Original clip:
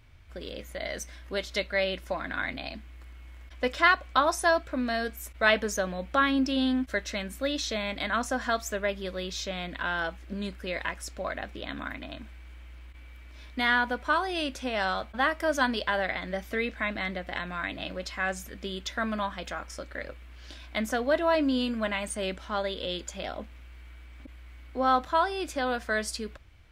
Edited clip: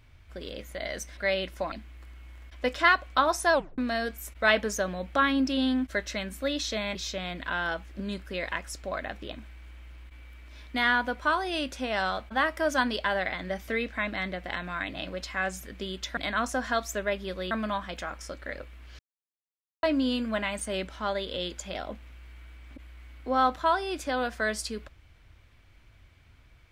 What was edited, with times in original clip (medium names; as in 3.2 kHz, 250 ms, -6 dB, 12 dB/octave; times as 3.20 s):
1.17–1.67 s: delete
2.22–2.71 s: delete
4.52 s: tape stop 0.25 s
7.94–9.28 s: move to 19.00 s
11.66–12.16 s: delete
20.48–21.32 s: mute